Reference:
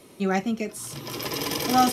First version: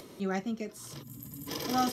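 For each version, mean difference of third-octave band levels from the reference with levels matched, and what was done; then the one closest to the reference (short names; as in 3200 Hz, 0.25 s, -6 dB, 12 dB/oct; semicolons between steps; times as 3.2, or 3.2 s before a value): 4.5 dB: spectral gain 1.03–1.48, 280–6600 Hz -23 dB; thirty-one-band EQ 800 Hz -3 dB, 2500 Hz -6 dB, 10000 Hz -10 dB; upward compressor, threshold -33 dBFS; gain -7.5 dB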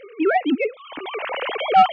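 16.0 dB: sine-wave speech; in parallel at -0.5 dB: compressor, threshold -38 dBFS, peak gain reduction 23.5 dB; on the sum: soft clip -12.5 dBFS, distortion -14 dB; gain +6 dB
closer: first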